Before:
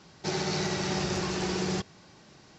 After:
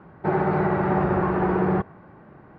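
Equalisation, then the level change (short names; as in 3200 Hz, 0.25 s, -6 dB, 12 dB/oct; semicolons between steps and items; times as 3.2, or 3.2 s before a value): LPF 1600 Hz 24 dB/oct; dynamic EQ 900 Hz, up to +4 dB, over -48 dBFS, Q 0.85; +8.0 dB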